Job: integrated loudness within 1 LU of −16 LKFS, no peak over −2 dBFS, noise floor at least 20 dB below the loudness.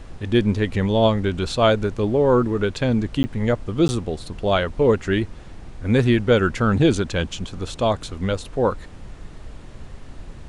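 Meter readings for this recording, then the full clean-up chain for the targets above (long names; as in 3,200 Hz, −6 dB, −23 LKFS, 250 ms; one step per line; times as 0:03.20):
number of dropouts 2; longest dropout 10 ms; background noise floor −40 dBFS; target noise floor −41 dBFS; integrated loudness −21.0 LKFS; sample peak −4.0 dBFS; target loudness −16.0 LKFS
→ repair the gap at 0:03.23/0:03.88, 10 ms
noise reduction from a noise print 6 dB
level +5 dB
brickwall limiter −2 dBFS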